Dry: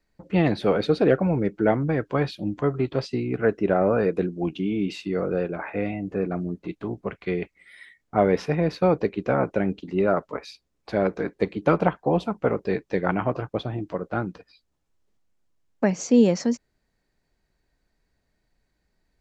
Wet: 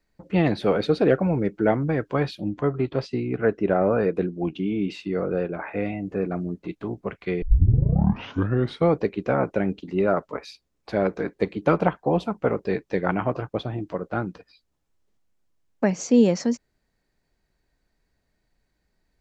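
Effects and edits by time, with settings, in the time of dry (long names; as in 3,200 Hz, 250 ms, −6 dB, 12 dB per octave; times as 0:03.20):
0:02.41–0:05.71: high-shelf EQ 6,400 Hz −9.5 dB
0:07.42: tape start 1.55 s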